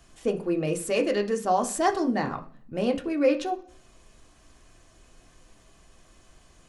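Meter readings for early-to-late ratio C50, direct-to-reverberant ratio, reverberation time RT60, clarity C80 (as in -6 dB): 14.5 dB, 3.0 dB, 0.45 s, 19.0 dB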